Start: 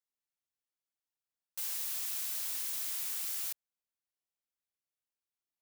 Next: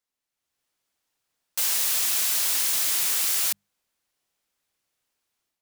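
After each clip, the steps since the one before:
high-shelf EQ 12,000 Hz −6 dB
mains-hum notches 50/100/150/200 Hz
automatic gain control gain up to 9 dB
level +7.5 dB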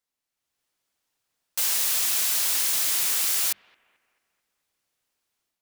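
bucket-brigade delay 219 ms, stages 4,096, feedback 47%, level −23.5 dB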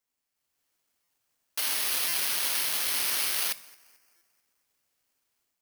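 on a send at −14 dB: convolution reverb RT60 0.60 s, pre-delay 3 ms
on the sum: bad sample-rate conversion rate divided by 6×, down filtered, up zero stuff
buffer that repeats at 0:01.03/0:02.08/0:04.16, samples 256, times 8

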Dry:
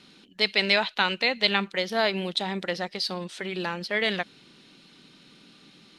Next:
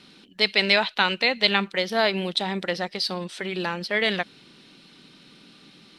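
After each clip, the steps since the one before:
notch filter 6,700 Hz, Q 15
level +2.5 dB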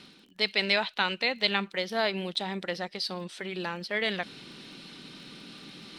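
reversed playback
upward compression, threshold −29 dBFS
reversed playback
surface crackle 19 per second −40 dBFS
level −6 dB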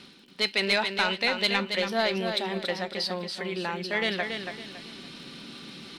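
soft clipping −15 dBFS, distortion −18 dB
tuned comb filter 77 Hz, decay 0.15 s, harmonics odd, mix 50%
repeating echo 280 ms, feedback 31%, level −6.5 dB
level +6 dB

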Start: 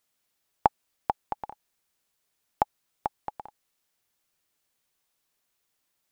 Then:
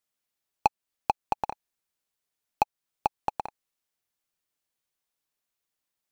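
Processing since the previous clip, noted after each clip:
in parallel at +0.5 dB: downward compressor, threshold −31 dBFS, peak gain reduction 15.5 dB
on the sum: leveller curve on the samples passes 3
level −8.5 dB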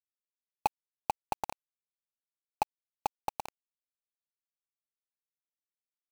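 bit reduction 5 bits
level −6 dB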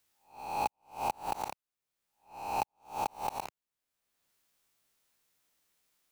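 peak hold with a rise ahead of every peak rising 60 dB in 0.37 s
multiband upward and downward compressor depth 70%
level −2 dB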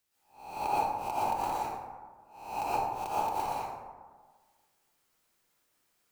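dense smooth reverb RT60 1.5 s, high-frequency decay 0.4×, pre-delay 105 ms, DRR −9 dB
level −5.5 dB

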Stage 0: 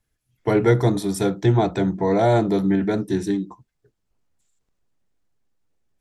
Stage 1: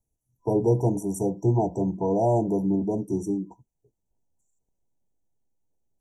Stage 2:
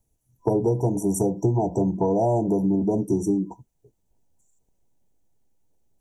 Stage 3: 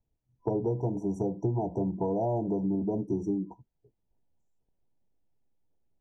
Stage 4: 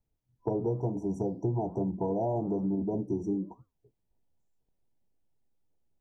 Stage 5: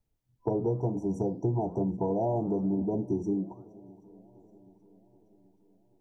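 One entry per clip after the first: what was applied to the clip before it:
brick-wall band-stop 1,000–5,600 Hz; level −4.5 dB
downward compressor 6 to 1, threshold −27 dBFS, peak gain reduction 11.5 dB; level +8.5 dB
high-frequency loss of the air 210 metres; level −7 dB
flanger 1.1 Hz, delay 4.5 ms, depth 9 ms, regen −89%; level +3.5 dB
feedback echo with a long and a short gap by turns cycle 779 ms, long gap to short 1.5 to 1, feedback 50%, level −23.5 dB; level +1.5 dB

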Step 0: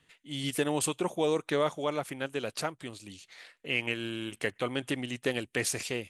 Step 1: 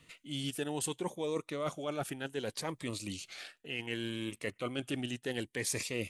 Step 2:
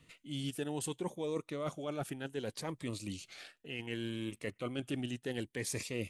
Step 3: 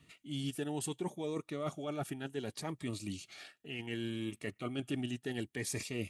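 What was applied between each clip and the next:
reversed playback; downward compressor 6 to 1, threshold −39 dBFS, peak gain reduction 15 dB; reversed playback; phaser whose notches keep moving one way rising 0.67 Hz; level +7 dB
low-shelf EQ 440 Hz +5.5 dB; level −4.5 dB
notch comb filter 510 Hz; level +1 dB

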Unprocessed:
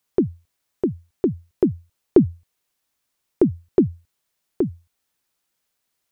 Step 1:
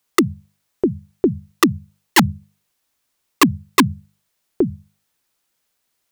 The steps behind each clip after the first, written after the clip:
wrap-around overflow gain 9 dB
mains-hum notches 50/100/150/200 Hz
level +4 dB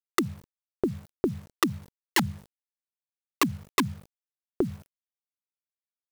downward compressor 3 to 1, threshold −21 dBFS, peak gain reduction 9.5 dB
bit reduction 8 bits
level −3 dB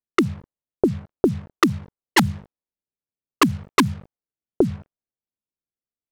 low-pass that shuts in the quiet parts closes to 430 Hz, open at −22 dBFS
level +8.5 dB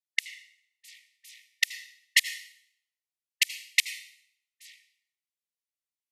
linear-phase brick-wall band-pass 1,800–14,000 Hz
convolution reverb RT60 0.70 s, pre-delay 73 ms, DRR 13 dB

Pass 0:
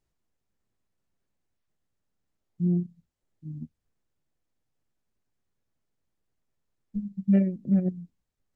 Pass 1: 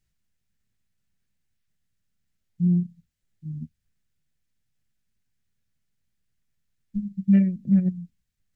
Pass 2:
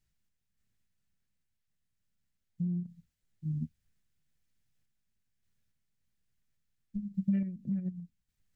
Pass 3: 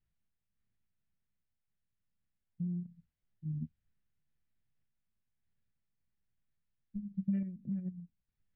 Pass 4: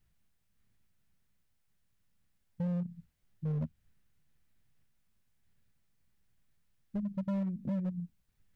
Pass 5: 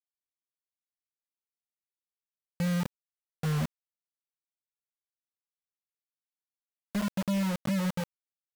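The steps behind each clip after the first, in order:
flat-topped bell 580 Hz −11.5 dB 2.4 octaves; level +4.5 dB
downward compressor 10 to 1, threshold −26 dBFS, peak gain reduction 13 dB; sample-and-hold tremolo 3.5 Hz, depth 55%
high-frequency loss of the air 290 metres; level −3.5 dB
in parallel at −2 dB: downward compressor 6 to 1, threshold −44 dBFS, peak gain reduction 14.5 dB; on the sum: hard clipping −35.5 dBFS, distortion −9 dB; level +5 dB
bit reduction 6 bits; level +3.5 dB

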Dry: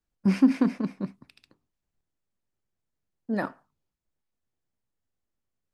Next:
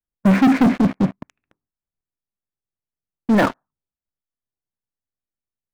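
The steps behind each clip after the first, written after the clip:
inverse Chebyshev low-pass filter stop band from 5,200 Hz, stop band 50 dB
leveller curve on the samples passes 5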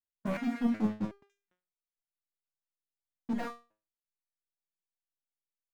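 step-sequenced resonator 2.7 Hz 82–520 Hz
level −6 dB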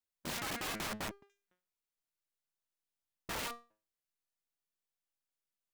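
wrap-around overflow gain 35 dB
level +1 dB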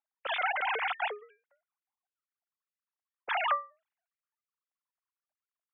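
three sine waves on the formant tracks
low-pass that shuts in the quiet parts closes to 1,000 Hz, open at −41.5 dBFS
level +9 dB

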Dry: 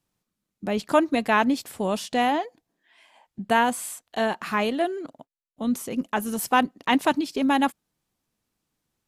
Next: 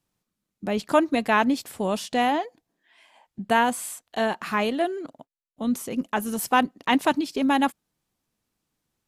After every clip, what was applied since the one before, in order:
no processing that can be heard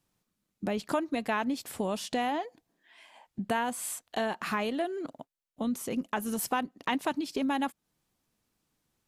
downward compressor 3 to 1, threshold −31 dBFS, peak gain reduction 13 dB
level +1 dB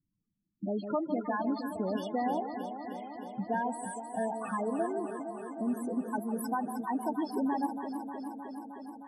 spectral peaks only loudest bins 8
delay that swaps between a low-pass and a high-pass 155 ms, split 890 Hz, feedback 87%, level −7 dB
level −1 dB

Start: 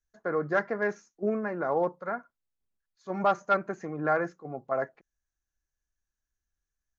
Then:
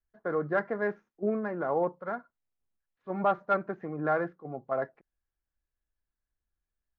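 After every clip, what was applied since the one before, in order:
running median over 9 samples
high-frequency loss of the air 350 metres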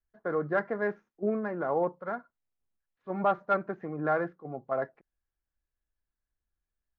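no processing that can be heard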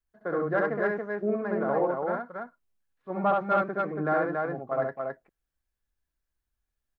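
loudspeakers that aren't time-aligned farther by 23 metres −2 dB, 96 metres −3 dB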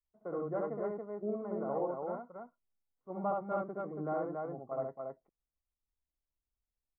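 Savitzky-Golay smoothing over 65 samples
level −8.5 dB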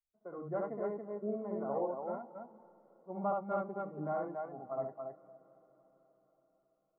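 feedback delay with all-pass diffusion 498 ms, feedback 50%, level −15 dB
noise reduction from a noise print of the clip's start 9 dB

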